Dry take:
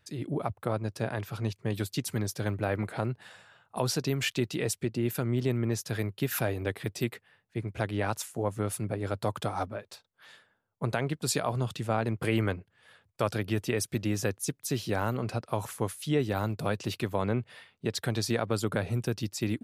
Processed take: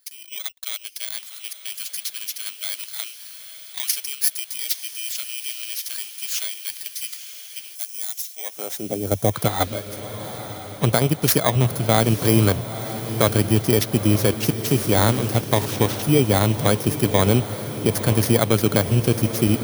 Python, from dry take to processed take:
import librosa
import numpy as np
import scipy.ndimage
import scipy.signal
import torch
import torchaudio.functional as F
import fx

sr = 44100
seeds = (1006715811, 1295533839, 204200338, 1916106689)

p1 = fx.bit_reversed(x, sr, seeds[0], block=16)
p2 = fx.filter_sweep_highpass(p1, sr, from_hz=3000.0, to_hz=67.0, start_s=8.31, end_s=9.22, q=1.0)
p3 = fx.level_steps(p2, sr, step_db=15)
p4 = p2 + (p3 * librosa.db_to_amplitude(3.0))
p5 = fx.quant_dither(p4, sr, seeds[1], bits=6, dither='none', at=(14.34, 15.65))
p6 = fx.echo_diffused(p5, sr, ms=925, feedback_pct=60, wet_db=-11)
p7 = fx.spec_box(p6, sr, start_s=7.75, length_s=1.59, low_hz=830.0, high_hz=5100.0, gain_db=-9)
y = p7 * librosa.db_to_amplitude(5.0)